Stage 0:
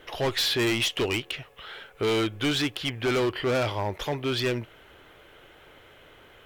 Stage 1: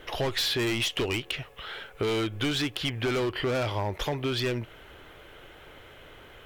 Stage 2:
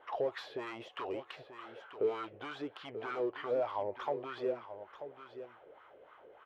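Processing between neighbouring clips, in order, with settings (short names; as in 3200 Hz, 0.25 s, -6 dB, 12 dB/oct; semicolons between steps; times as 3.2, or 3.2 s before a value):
low shelf 85 Hz +6 dB; compressor, threshold -28 dBFS, peak gain reduction 6.5 dB; gain +2.5 dB
on a send: echo 0.936 s -10.5 dB; on the sum: wah 3.3 Hz 460–1200 Hz, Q 3.8; gain +1 dB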